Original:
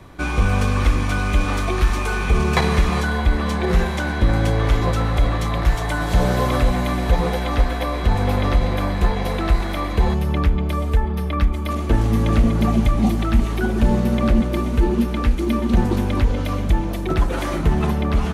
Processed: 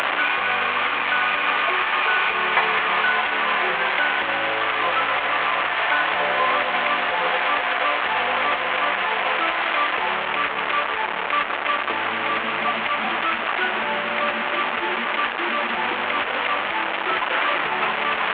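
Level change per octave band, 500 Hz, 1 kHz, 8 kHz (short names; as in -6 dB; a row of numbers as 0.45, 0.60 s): -2.5 dB, +5.5 dB, under -20 dB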